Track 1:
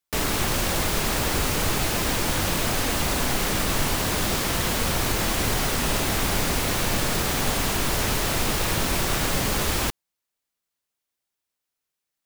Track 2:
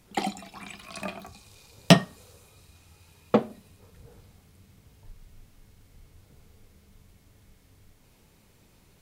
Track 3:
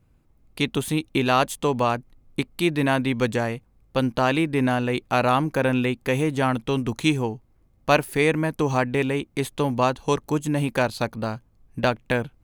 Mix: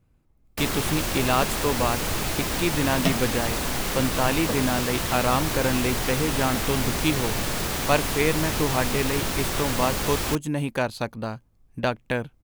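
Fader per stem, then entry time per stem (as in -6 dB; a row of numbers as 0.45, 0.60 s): -3.0, -9.5, -3.0 dB; 0.45, 1.15, 0.00 s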